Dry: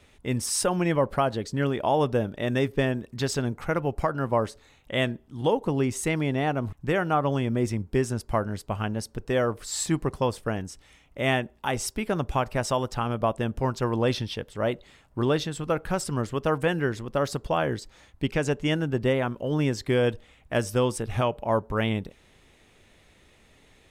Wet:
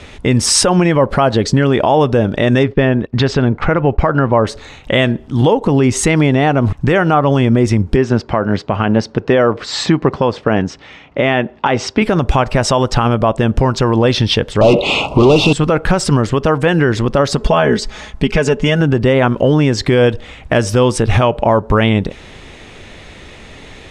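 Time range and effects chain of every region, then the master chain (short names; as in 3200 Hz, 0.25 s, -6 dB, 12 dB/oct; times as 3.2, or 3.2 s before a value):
2.63–4.47 LPF 3200 Hz + gate -43 dBFS, range -16 dB
7.96–12.02 Bessel high-pass 160 Hz + air absorption 170 m
14.61–15.53 bell 2600 Hz +13.5 dB 0.32 oct + overdrive pedal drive 35 dB, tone 1100 Hz, clips at -12 dBFS + Butterworth band-stop 1700 Hz, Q 0.99
17.37–18.81 notch 4100 Hz, Q 20 + comb 4.7 ms, depth 68%
whole clip: LPF 6300 Hz 12 dB/oct; compressor, threshold -28 dBFS; maximiser +23 dB; gain -1 dB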